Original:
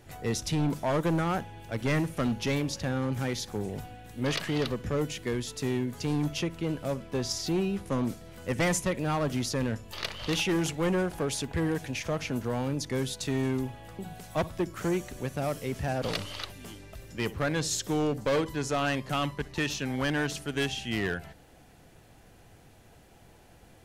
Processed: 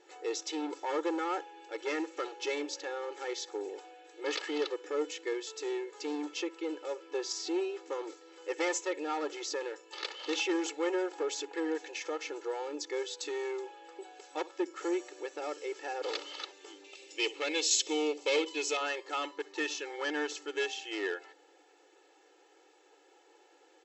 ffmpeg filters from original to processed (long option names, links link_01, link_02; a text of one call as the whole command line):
ffmpeg -i in.wav -filter_complex "[0:a]asettb=1/sr,asplit=3[link_01][link_02][link_03];[link_01]atrim=end=16.844[link_04];[link_02]atrim=start=16.84:end=18.77,asetpts=PTS-STARTPTS,afade=type=in:duration=0.004:curve=qsin,afade=type=out:start_time=1.926:duration=0.004:curve=qsin,highshelf=frequency=2000:width_type=q:width=3:gain=6.5[link_05];[link_03]atrim=start=18.766[link_06];[link_04][link_05]acrossfade=duration=0.004:curve1=hsin:curve2=qsin[link_07];[link_07][link_06]acrossfade=duration=0.004:curve1=qsin:curve2=hsin,afftfilt=real='re*between(b*sr/4096,280,7900)':imag='im*between(b*sr/4096,280,7900)':win_size=4096:overlap=0.75,aecho=1:1:2.3:0.97,volume=-6.5dB" out.wav